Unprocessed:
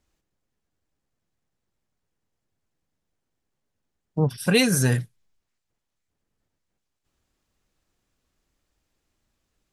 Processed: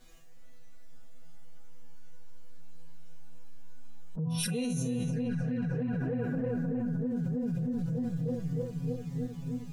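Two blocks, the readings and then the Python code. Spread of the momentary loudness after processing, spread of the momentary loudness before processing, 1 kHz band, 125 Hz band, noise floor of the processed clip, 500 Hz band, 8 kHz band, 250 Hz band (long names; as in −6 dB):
5 LU, 9 LU, −8.0 dB, −3.0 dB, −42 dBFS, −6.0 dB, −10.0 dB, −1.0 dB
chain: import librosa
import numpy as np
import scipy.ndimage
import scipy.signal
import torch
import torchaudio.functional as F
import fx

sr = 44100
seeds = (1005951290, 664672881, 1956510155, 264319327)

y = fx.hpss(x, sr, part='percussive', gain_db=-16)
y = fx.resonator_bank(y, sr, root=52, chord='fifth', decay_s=0.32)
y = fx.echo_filtered(y, sr, ms=309, feedback_pct=80, hz=2100.0, wet_db=-11.0)
y = fx.env_flanger(y, sr, rest_ms=7.9, full_db=-39.5)
y = fx.env_flatten(y, sr, amount_pct=100)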